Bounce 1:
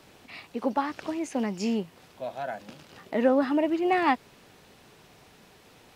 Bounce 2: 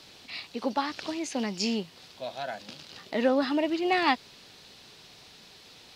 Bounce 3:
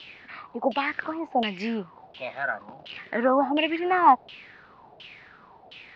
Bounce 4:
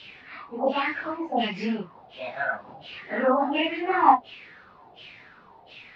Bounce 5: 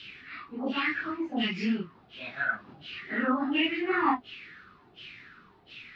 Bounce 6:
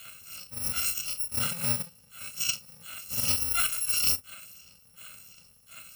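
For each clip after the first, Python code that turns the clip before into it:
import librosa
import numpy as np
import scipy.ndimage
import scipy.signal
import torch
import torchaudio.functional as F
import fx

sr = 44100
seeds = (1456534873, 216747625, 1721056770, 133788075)

y1 = fx.peak_eq(x, sr, hz=4300.0, db=14.5, octaves=1.3)
y1 = y1 * 10.0 ** (-2.5 / 20.0)
y2 = fx.filter_lfo_lowpass(y1, sr, shape='saw_down', hz=1.4, low_hz=650.0, high_hz=3100.0, q=7.6)
y3 = fx.phase_scramble(y2, sr, seeds[0], window_ms=100)
y4 = fx.band_shelf(y3, sr, hz=690.0, db=-13.0, octaves=1.3)
y5 = fx.bit_reversed(y4, sr, seeds[1], block=128)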